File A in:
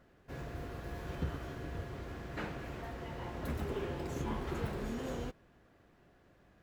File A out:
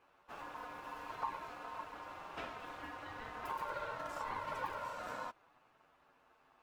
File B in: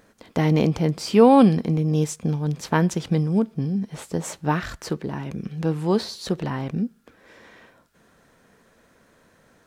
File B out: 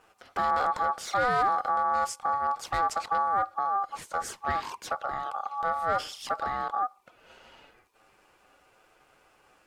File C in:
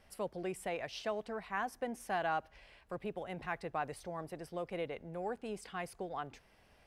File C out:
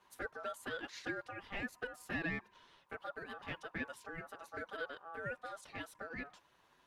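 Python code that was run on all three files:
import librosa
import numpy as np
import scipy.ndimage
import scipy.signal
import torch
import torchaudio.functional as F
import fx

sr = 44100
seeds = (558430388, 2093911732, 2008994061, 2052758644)

y = 10.0 ** (-20.5 / 20.0) * np.tanh(x / 10.0 ** (-20.5 / 20.0))
y = fx.env_flanger(y, sr, rest_ms=10.3, full_db=-27.0)
y = y * np.sin(2.0 * np.pi * 990.0 * np.arange(len(y)) / sr)
y = y * 10.0 ** (1.5 / 20.0)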